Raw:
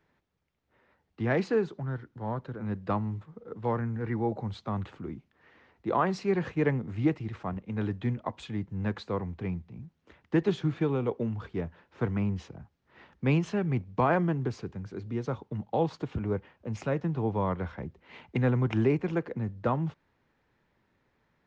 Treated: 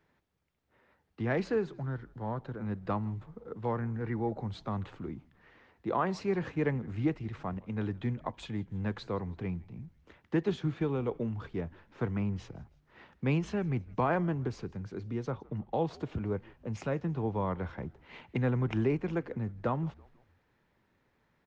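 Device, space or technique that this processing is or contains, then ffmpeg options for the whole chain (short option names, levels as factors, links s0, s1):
parallel compression: -filter_complex "[0:a]asettb=1/sr,asplit=3[s0][s1][s2];[s0]atrim=end=15.314[s3];[s1]atrim=start=15.31:end=15.73,asetpts=PTS-STARTPTS,afade=t=in:d=0.004:c=qsin,afade=t=out:st=0.416:d=0.004:c=qsin,lowpass=3300[s4];[s2]atrim=start=15.726[s5];[s3][s4]acrossfade=d=0.004:c1=hsin:c2=qsin[s6];[s6][s5]acrossfade=d=0.004:c1=qsin:c2=hsin,asplit=2[s7][s8];[s8]acompressor=threshold=0.0178:ratio=6,volume=0.668[s9];[s7][s9]amix=inputs=2:normalize=0,asplit=4[s10][s11][s12][s13];[s11]adelay=163,afreqshift=-83,volume=0.0631[s14];[s12]adelay=326,afreqshift=-166,volume=0.0309[s15];[s13]adelay=489,afreqshift=-249,volume=0.0151[s16];[s10][s14][s15][s16]amix=inputs=4:normalize=0,volume=0.562"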